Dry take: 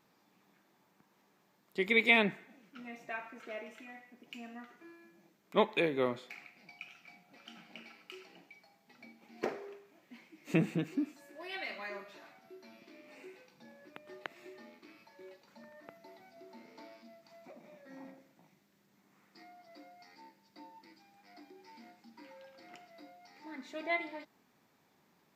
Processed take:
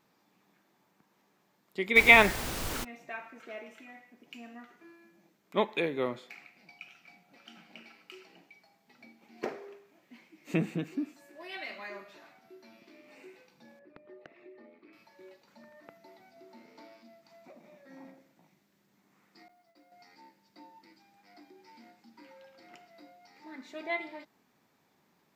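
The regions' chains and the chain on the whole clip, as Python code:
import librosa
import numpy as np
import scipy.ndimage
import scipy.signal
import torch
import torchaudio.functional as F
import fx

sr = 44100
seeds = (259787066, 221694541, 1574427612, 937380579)

y = fx.peak_eq(x, sr, hz=1200.0, db=13.0, octaves=2.4, at=(1.95, 2.83), fade=0.02)
y = fx.dmg_noise_colour(y, sr, seeds[0], colour='pink', level_db=-35.0, at=(1.95, 2.83), fade=0.02)
y = fx.chain(y, sr, fx.envelope_sharpen(power=1.5),
    fx.clip_hard(threshold_db=-37.0),
    fx.air_absorb(metres=210.0), at=(13.79, 14.93))
y = fx.chain(y, sr, fx.law_mismatch(coded='A'),
    fx.gate_hold(open_db=-57.0, close_db=-65.0, hold_ms=71.0, range_db=-21, attack_ms=1.4, release_ms=100.0), at=(19.48, 19.92))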